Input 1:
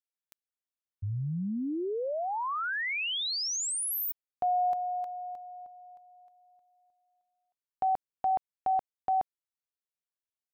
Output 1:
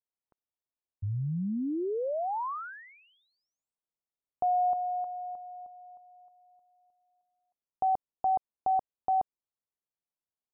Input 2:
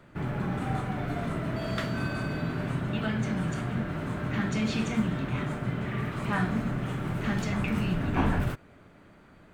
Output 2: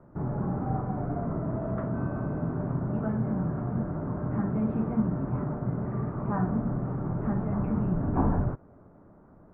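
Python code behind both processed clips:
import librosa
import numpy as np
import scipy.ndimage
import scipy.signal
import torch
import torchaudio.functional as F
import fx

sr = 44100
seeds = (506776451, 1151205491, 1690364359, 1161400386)

y = scipy.signal.sosfilt(scipy.signal.butter(4, 1100.0, 'lowpass', fs=sr, output='sos'), x)
y = F.gain(torch.from_numpy(y), 1.0).numpy()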